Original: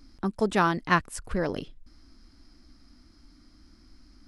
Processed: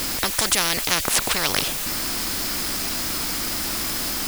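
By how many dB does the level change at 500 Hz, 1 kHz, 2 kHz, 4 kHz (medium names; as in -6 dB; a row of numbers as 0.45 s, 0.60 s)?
-0.5 dB, +0.5 dB, +6.5 dB, +21.0 dB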